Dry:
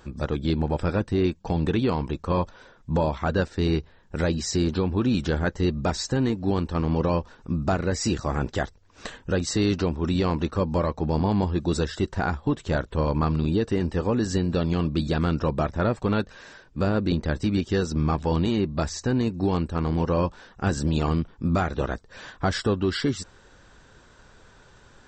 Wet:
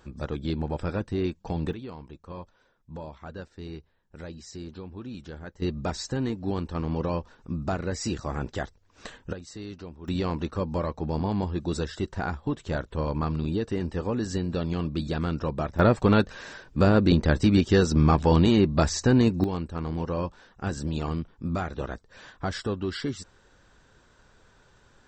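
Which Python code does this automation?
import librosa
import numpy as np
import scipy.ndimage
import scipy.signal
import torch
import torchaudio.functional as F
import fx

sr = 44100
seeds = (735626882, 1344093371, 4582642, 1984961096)

y = fx.gain(x, sr, db=fx.steps((0.0, -5.0), (1.73, -16.0), (5.62, -5.0), (9.33, -16.5), (10.08, -4.5), (15.79, 4.0), (19.44, -6.0)))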